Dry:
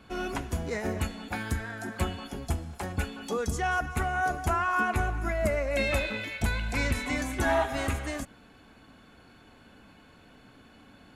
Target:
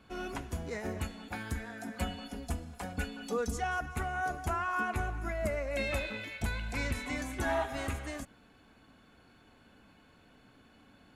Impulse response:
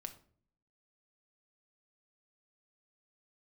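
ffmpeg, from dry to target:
-filter_complex "[0:a]asettb=1/sr,asplit=3[link_01][link_02][link_03];[link_01]atrim=end=1.554[link_04];[link_02]atrim=start=1.55:end=3.64,asetpts=PTS-STARTPTS,afade=type=in:duration=0.004:curve=qsin,afade=type=out:start_time=2.086:duration=0.004:curve=qsin,aecho=1:1:4.1:0.68,atrim=end_sample=92169[link_05];[link_03]atrim=start=3.636[link_06];[link_04][link_05]acrossfade=duration=0.004:curve1=hsin:curve2=qsin[link_07];[link_07][link_06]acrossfade=duration=0.004:curve1=qsin:curve2=hsin,volume=-6dB"

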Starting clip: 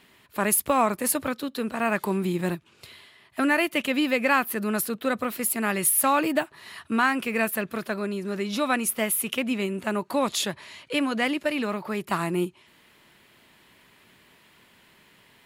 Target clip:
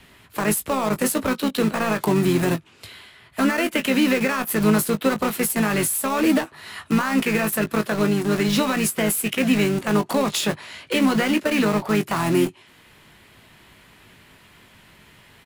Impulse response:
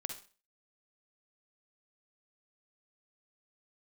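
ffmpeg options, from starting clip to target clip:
-filter_complex "[0:a]acrossover=split=130|1200[link_01][link_02][link_03];[link_01]acompressor=mode=upward:threshold=-55dB:ratio=2.5[link_04];[link_04][link_02][link_03]amix=inputs=3:normalize=0,alimiter=limit=-19dB:level=0:latency=1:release=51,acrossover=split=460[link_05][link_06];[link_06]acompressor=threshold=-29dB:ratio=10[link_07];[link_05][link_07]amix=inputs=2:normalize=0,aresample=32000,aresample=44100,asplit=2[link_08][link_09];[link_09]acrusher=bits=4:mix=0:aa=0.000001,volume=-7dB[link_10];[link_08][link_10]amix=inputs=2:normalize=0,asplit=2[link_11][link_12];[link_12]asetrate=33038,aresample=44100,atempo=1.33484,volume=-8dB[link_13];[link_11][link_13]amix=inputs=2:normalize=0,asplit=2[link_14][link_15];[link_15]adelay=19,volume=-9dB[link_16];[link_14][link_16]amix=inputs=2:normalize=0,volume=4.5dB"

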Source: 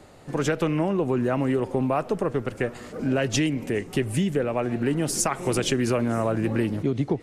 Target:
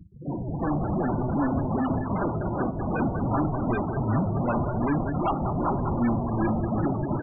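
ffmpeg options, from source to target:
ffmpeg -i in.wav -filter_complex "[0:a]aresample=8000,acrusher=samples=18:mix=1:aa=0.000001:lfo=1:lforange=28.8:lforate=2.6,aresample=44100,acompressor=threshold=-31dB:ratio=10,aecho=1:1:195|390|585|780|975:0.1|0.059|0.0348|0.0205|0.0121,asplit=2[link_01][link_02];[link_02]highpass=frequency=720:poles=1,volume=39dB,asoftclip=type=tanh:threshold=-18dB[link_03];[link_01][link_03]amix=inputs=2:normalize=0,lowpass=frequency=1100:poles=1,volume=-6dB,dynaudnorm=framelen=220:gausssize=5:maxgain=6dB,afftfilt=real='re*gte(hypot(re,im),0.1)':imag='im*gte(hypot(re,im),0.1)':win_size=1024:overlap=0.75,equalizer=frequency=460:width=2.2:gain=-11.5,bandreject=frequency=63.66:width_type=h:width=4,bandreject=frequency=127.32:width_type=h:width=4,bandreject=frequency=190.98:width_type=h:width=4,bandreject=frequency=254.64:width_type=h:width=4,bandreject=frequency=318.3:width_type=h:width=4,bandreject=frequency=381.96:width_type=h:width=4,bandreject=frequency=445.62:width_type=h:width=4,bandreject=frequency=509.28:width_type=h:width=4,bandreject=frequency=572.94:width_type=h:width=4,bandreject=frequency=636.6:width_type=h:width=4,bandreject=frequency=700.26:width_type=h:width=4,bandreject=frequency=763.92:width_type=h:width=4,bandreject=frequency=827.58:width_type=h:width=4,bandreject=frequency=891.24:width_type=h:width=4,bandreject=frequency=954.9:width_type=h:width=4,bandreject=frequency=1018.56:width_type=h:width=4,bandreject=frequency=1082.22:width_type=h:width=4,bandreject=frequency=1145.88:width_type=h:width=4,bandreject=frequency=1209.54:width_type=h:width=4,bandreject=frequency=1273.2:width_type=h:width=4,bandreject=frequency=1336.86:width_type=h:width=4,bandreject=frequency=1400.52:width_type=h:width=4,bandreject=frequency=1464.18:width_type=h:width=4" out.wav

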